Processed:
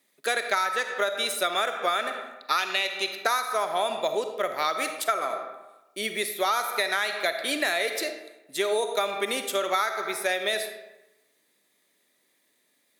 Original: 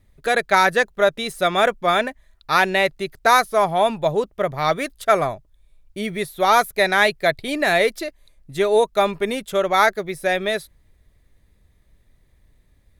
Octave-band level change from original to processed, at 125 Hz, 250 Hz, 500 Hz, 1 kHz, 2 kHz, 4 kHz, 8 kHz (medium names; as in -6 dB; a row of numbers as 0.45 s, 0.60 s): under -20 dB, -11.0 dB, -9.0 dB, -8.0 dB, -7.0 dB, -2.0 dB, 0.0 dB